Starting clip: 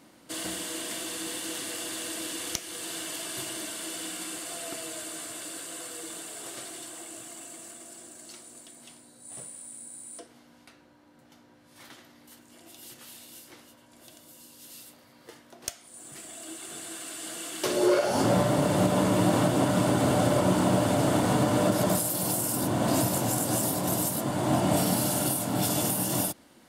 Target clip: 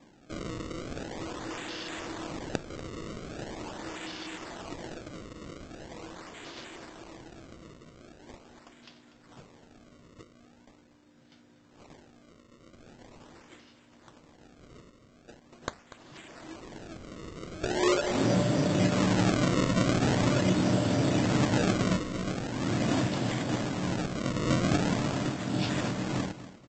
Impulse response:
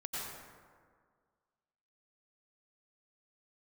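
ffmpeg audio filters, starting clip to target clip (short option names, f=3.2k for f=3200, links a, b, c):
-af "equalizer=f=900:t=o:w=1.3:g=-9,aresample=16000,acrusher=samples=11:mix=1:aa=0.000001:lfo=1:lforange=17.6:lforate=0.42,aresample=44100,aecho=1:1:241|482|723:0.188|0.0452|0.0108"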